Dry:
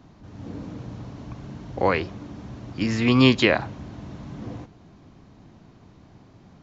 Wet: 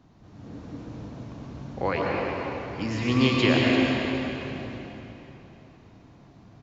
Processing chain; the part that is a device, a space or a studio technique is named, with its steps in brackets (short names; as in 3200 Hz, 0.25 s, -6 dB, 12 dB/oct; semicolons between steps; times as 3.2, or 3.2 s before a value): cave (echo 0.344 s -10.5 dB; reverb RT60 3.3 s, pre-delay 95 ms, DRR -3 dB); gain -6.5 dB